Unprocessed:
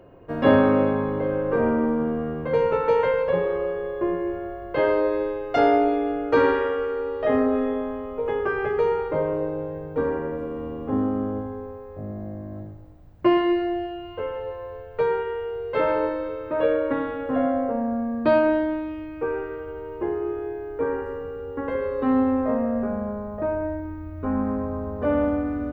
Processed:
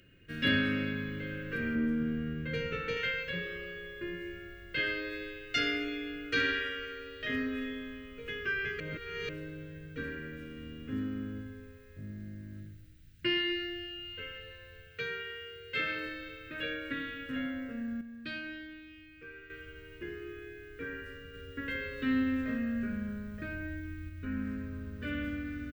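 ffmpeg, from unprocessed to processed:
-filter_complex "[0:a]asettb=1/sr,asplit=3[s0][s1][s2];[s0]atrim=end=1.754[s3];[s1]atrim=start=1.75:end=2.97,asetpts=PTS-STARTPTS,afade=t=in:d=0.004:c=qsin,afade=t=out:st=1.216:d=0.004:c=qsin,tiltshelf=f=1300:g=4.5[s4];[s2]atrim=start=2.966[s5];[s3][s4]acrossfade=d=0.004:c1=hsin:c2=qsin[s6];[s6][s5]acrossfade=d=0.004:c1=qsin:c2=hsin,asettb=1/sr,asplit=3[s7][s8][s9];[s7]atrim=end=14.874[s10];[s8]atrim=start=14.87:end=16.06,asetpts=PTS-STARTPTS,afade=t=in:d=0.004:c=qsin,afade=t=out:st=1.186:d=0.004:c=qsin,highpass=80[s11];[s9]atrim=start=16.056[s12];[s10][s11]acrossfade=d=0.004:c1=hsin:c2=qsin[s13];[s13][s12]acrossfade=d=0.004:c1=qsin:c2=hsin,asplit=7[s14][s15][s16][s17][s18][s19][s20];[s14]atrim=end=8.802[s21];[s15]atrim=start=8.798:end=9.292,asetpts=PTS-STARTPTS,areverse[s22];[s16]atrim=start=9.288:end=18.012[s23];[s17]atrim=start=18.008:end=19.502,asetpts=PTS-STARTPTS,volume=0.376[s24];[s18]atrim=start=19.498:end=21.342[s25];[s19]atrim=start=21.338:end=24.092,asetpts=PTS-STARTPTS,volume=1.41[s26];[s20]atrim=start=24.088[s27];[s21][s22]acrossfade=d=0.004:c1=hsin:c2=hsin[s28];[s28][s23]acrossfade=d=0.004:c1=hsin:c2=hsin[s29];[s29][s24]acrossfade=d=0.004:c1=hsin:c2=hsin[s30];[s30][s25]acrossfade=d=0.004:c1=hsin:c2=hsin[s31];[s31][s26]acrossfade=d=0.004:c1=hsin:c2=hsin[s32];[s32][s27]acrossfade=d=0.004:c1=hsin:c2=hsin,firequalizer=gain_entry='entry(180,0);entry(860,-29);entry(1500,6);entry(2700,14)':delay=0.05:min_phase=1,volume=0.398"

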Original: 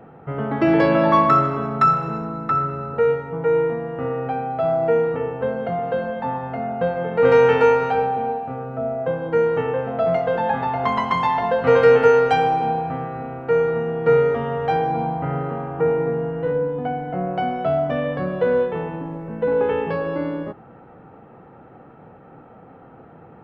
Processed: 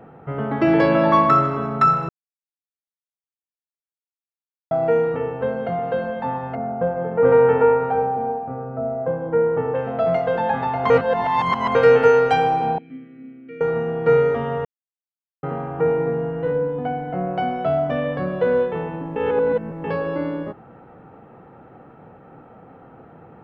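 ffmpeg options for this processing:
-filter_complex "[0:a]asettb=1/sr,asplit=3[s0][s1][s2];[s0]atrim=end=6.554[s3];[s1]atrim=start=6.55:end=9.75,asetpts=PTS-STARTPTS,afade=t=in:d=0.004:c=qsin,afade=t=out:st=3.196:d=0.004:c=qsin,lowpass=1300[s4];[s2]atrim=start=9.746[s5];[s3][s4]acrossfade=d=0.004:c1=hsin:c2=qsin[s6];[s6][s5]acrossfade=d=0.004:c1=qsin:c2=hsin,asettb=1/sr,asplit=3[s7][s8][s9];[s7]atrim=end=12.784[s10];[s8]atrim=start=12.78:end=13.61,asetpts=PTS-STARTPTS,afade=t=in:d=0.004:c=qsin,afade=t=out:st=0.826:d=0.004:c=qsin,asplit=3[s11][s12][s13];[s11]bandpass=f=270:t=q:w=8,volume=1[s14];[s12]bandpass=f=2290:t=q:w=8,volume=0.501[s15];[s13]bandpass=f=3010:t=q:w=8,volume=0.355[s16];[s14][s15][s16]amix=inputs=3:normalize=0[s17];[s9]atrim=start=13.606[s18];[s10][s17]acrossfade=d=0.004:c1=hsin:c2=qsin[s19];[s19][s18]acrossfade=d=0.004:c1=qsin:c2=hsin,asplit=9[s20][s21][s22][s23][s24][s25][s26][s27][s28];[s20]atrim=end=2.09,asetpts=PTS-STARTPTS,afade=t=out:st=2.086:d=0.004:c=hsin[s29];[s21]atrim=start=2.09:end=4.71,asetpts=PTS-STARTPTS,volume=0[s30];[s22]atrim=start=4.71:end=10.902,asetpts=PTS-STARTPTS,afade=t=in:d=0.004:c=hsin[s31];[s23]atrim=start=10.898:end=11.752,asetpts=PTS-STARTPTS,areverse[s32];[s24]atrim=start=11.748:end=14.65,asetpts=PTS-STARTPTS,afade=t=out:st=2.898:d=0.004:c=hsin[s33];[s25]atrim=start=14.65:end=15.43,asetpts=PTS-STARTPTS,volume=0[s34];[s26]atrim=start=15.43:end=19.162,asetpts=PTS-STARTPTS,afade=t=in:d=0.004:c=hsin[s35];[s27]atrim=start=19.158:end=19.842,asetpts=PTS-STARTPTS,areverse[s36];[s28]atrim=start=19.838[s37];[s29][s30][s31]concat=n=3:v=0:a=1[s38];[s38][s32]acrossfade=d=0.004:c1=hsin:c2=hsin[s39];[s33][s34][s35]concat=n=3:v=0:a=1[s40];[s39][s40]acrossfade=d=0.004:c1=hsin:c2=hsin[s41];[s41][s36]acrossfade=d=0.004:c1=hsin:c2=hsin[s42];[s42][s37]acrossfade=d=0.004:c1=hsin:c2=hsin"

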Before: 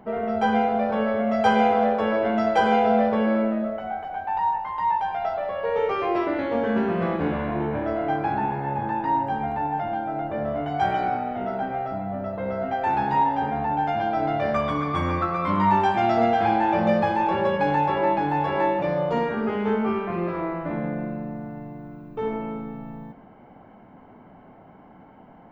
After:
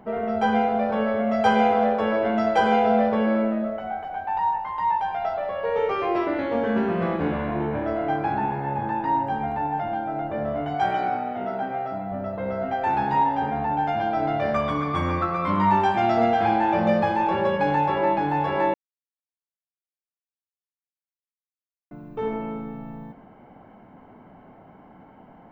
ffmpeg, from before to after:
-filter_complex "[0:a]asettb=1/sr,asplit=3[s0][s1][s2];[s0]atrim=end=10.744[s3];[s1]atrim=start=10.74:end=12.12,asetpts=PTS-STARTPTS,afade=t=in:d=0.004:c=qsin,afade=t=out:st=1.376:d=0.004:c=qsin,highpass=f=160:p=1[s4];[s2]atrim=start=12.116[s5];[s3][s4]acrossfade=d=0.004:c1=hsin:c2=qsin[s6];[s6][s5]acrossfade=d=0.004:c1=qsin:c2=hsin,asplit=3[s7][s8][s9];[s7]atrim=end=18.74,asetpts=PTS-STARTPTS,afade=t=out:st=18.736:d=0.004:c=hsin[s10];[s8]atrim=start=18.74:end=21.91,asetpts=PTS-STARTPTS,volume=0[s11];[s9]atrim=start=21.91,asetpts=PTS-STARTPTS,afade=t=in:d=0.004:c=hsin[s12];[s10][s11][s12]concat=n=3:v=0:a=1"

